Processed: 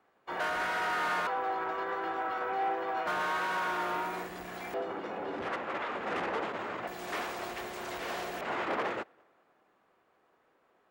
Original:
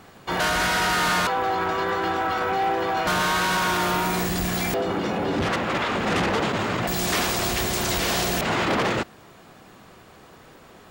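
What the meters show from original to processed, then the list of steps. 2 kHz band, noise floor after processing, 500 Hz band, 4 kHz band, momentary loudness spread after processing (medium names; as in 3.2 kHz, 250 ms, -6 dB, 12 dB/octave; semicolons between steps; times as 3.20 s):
-10.0 dB, -70 dBFS, -10.0 dB, -17.0 dB, 8 LU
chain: three-band isolator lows -16 dB, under 300 Hz, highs -13 dB, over 2.5 kHz; tape echo 201 ms, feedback 57%, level -21 dB, low-pass 3.8 kHz; upward expansion 1.5:1, over -46 dBFS; trim -7 dB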